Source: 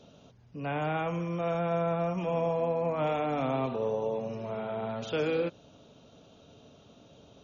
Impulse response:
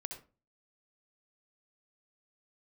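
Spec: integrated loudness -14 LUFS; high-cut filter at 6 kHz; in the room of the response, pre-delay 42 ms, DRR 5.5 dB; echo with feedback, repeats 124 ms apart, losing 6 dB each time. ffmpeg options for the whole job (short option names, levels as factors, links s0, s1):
-filter_complex "[0:a]lowpass=6000,aecho=1:1:124|248|372|496|620|744:0.501|0.251|0.125|0.0626|0.0313|0.0157,asplit=2[s0][s1];[1:a]atrim=start_sample=2205,adelay=42[s2];[s1][s2]afir=irnorm=-1:irlink=0,volume=0.668[s3];[s0][s3]amix=inputs=2:normalize=0,volume=5.62"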